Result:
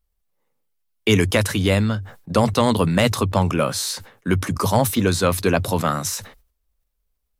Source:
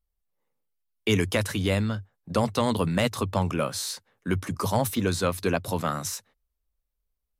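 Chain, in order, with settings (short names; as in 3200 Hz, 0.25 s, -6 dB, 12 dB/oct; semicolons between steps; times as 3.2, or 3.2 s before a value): sustainer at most 120 dB/s; gain +6.5 dB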